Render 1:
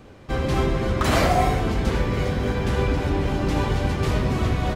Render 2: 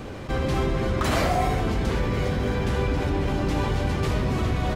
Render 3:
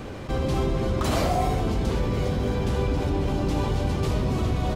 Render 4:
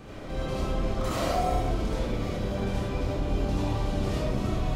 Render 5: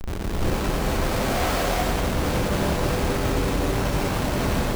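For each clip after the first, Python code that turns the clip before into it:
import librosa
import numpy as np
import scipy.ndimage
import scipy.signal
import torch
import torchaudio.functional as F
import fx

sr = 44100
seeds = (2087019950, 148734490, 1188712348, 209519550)

y1 = fx.env_flatten(x, sr, amount_pct=50)
y1 = y1 * librosa.db_to_amplitude(-4.5)
y2 = fx.dynamic_eq(y1, sr, hz=1800.0, q=1.3, threshold_db=-45.0, ratio=4.0, max_db=-7)
y3 = fx.chorus_voices(y2, sr, voices=2, hz=0.61, base_ms=28, depth_ms=3.2, mix_pct=40)
y3 = fx.rev_freeverb(y3, sr, rt60_s=0.48, hf_ratio=0.7, predelay_ms=35, drr_db=-4.5)
y3 = y3 * librosa.db_to_amplitude(-6.0)
y4 = fx.schmitt(y3, sr, flips_db=-37.5)
y4 = fx.rev_gated(y4, sr, seeds[0], gate_ms=430, shape='rising', drr_db=-4.0)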